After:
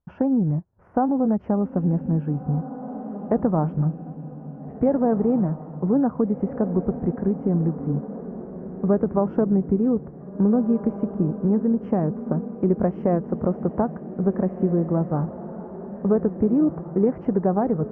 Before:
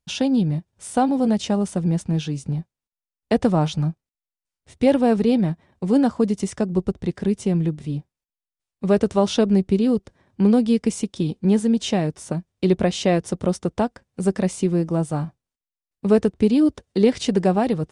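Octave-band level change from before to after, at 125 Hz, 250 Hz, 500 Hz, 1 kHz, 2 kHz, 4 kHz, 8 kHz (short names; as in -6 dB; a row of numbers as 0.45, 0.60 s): -0.5 dB, -1.5 dB, -2.0 dB, -2.0 dB, under -10 dB, under -35 dB, under -40 dB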